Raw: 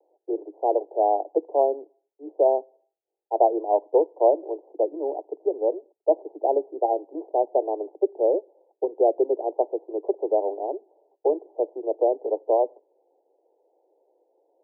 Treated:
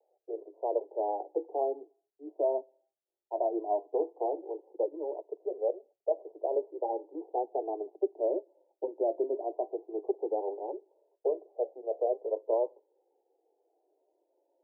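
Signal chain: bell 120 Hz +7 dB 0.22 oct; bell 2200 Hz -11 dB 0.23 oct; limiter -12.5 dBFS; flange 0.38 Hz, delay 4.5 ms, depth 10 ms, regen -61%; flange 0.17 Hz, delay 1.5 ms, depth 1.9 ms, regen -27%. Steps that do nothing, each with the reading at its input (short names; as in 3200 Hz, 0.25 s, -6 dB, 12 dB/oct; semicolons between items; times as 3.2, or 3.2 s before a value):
bell 120 Hz: input band starts at 250 Hz; bell 2200 Hz: input band ends at 1000 Hz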